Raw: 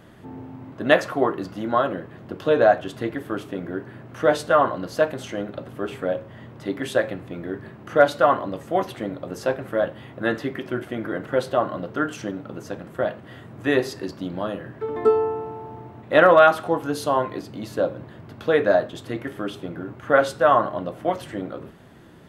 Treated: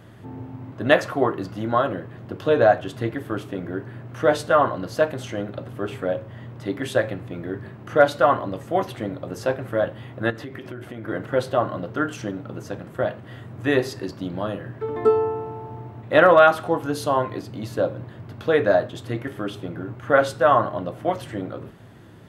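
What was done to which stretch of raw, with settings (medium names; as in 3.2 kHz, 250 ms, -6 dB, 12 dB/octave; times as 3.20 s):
10.30–11.08 s: compression 5:1, threshold -32 dBFS
whole clip: peaking EQ 110 Hz +11 dB 0.31 oct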